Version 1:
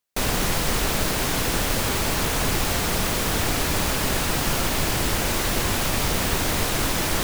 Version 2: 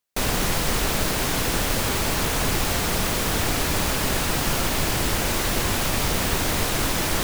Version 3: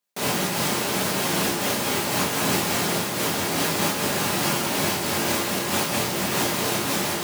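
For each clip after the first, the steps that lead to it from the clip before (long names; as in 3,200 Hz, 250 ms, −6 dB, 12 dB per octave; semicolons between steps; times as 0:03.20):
no processing that can be heard
high-pass filter 120 Hz 24 dB per octave; convolution reverb RT60 0.30 s, pre-delay 5 ms, DRR 0 dB; amplitude modulation by smooth noise, depth 55%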